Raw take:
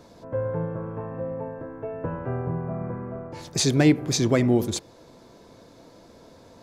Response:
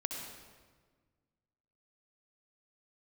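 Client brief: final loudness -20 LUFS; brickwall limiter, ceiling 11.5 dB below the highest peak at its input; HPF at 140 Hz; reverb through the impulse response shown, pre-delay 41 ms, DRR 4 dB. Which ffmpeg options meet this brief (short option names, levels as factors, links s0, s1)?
-filter_complex "[0:a]highpass=140,alimiter=limit=0.119:level=0:latency=1,asplit=2[s0][s1];[1:a]atrim=start_sample=2205,adelay=41[s2];[s1][s2]afir=irnorm=-1:irlink=0,volume=0.531[s3];[s0][s3]amix=inputs=2:normalize=0,volume=2.82"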